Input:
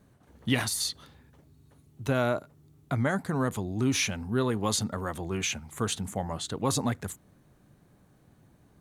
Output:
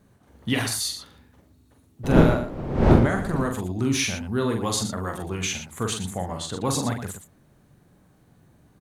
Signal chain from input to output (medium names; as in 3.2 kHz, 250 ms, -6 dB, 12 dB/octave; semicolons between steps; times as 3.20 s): 2.03–3.43 s: wind noise 330 Hz -23 dBFS; loudspeakers at several distances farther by 15 m -5 dB, 40 m -10 dB; trim +1.5 dB